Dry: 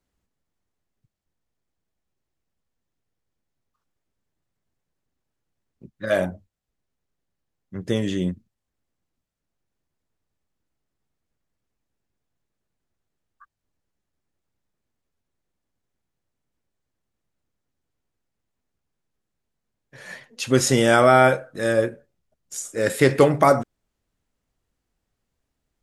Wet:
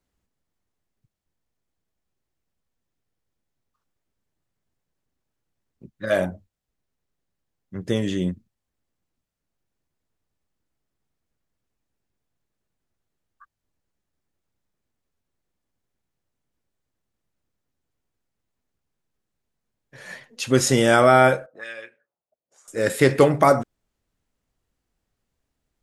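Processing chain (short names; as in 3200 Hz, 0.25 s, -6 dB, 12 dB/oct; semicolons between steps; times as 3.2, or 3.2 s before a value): 21.46–22.68 auto-wah 540–2500 Hz, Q 2.7, up, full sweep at -21.5 dBFS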